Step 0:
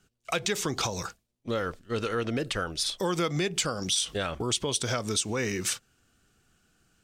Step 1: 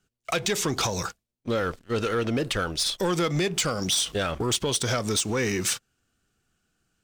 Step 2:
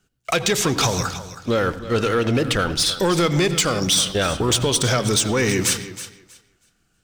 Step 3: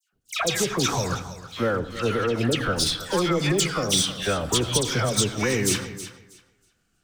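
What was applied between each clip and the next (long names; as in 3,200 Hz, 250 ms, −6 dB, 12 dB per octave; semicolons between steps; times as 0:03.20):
leveller curve on the samples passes 2; level −2.5 dB
feedback echo with a high-pass in the loop 320 ms, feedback 20%, high-pass 250 Hz, level −13.5 dB; on a send at −14 dB: convolution reverb RT60 0.45 s, pre-delay 76 ms; on the sum: level +6 dB
all-pass dispersion lows, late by 127 ms, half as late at 1,600 Hz; level −4 dB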